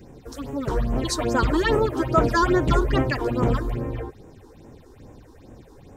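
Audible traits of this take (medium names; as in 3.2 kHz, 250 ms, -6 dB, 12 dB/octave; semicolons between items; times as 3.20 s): phasing stages 6, 2.4 Hz, lowest notch 150–4400 Hz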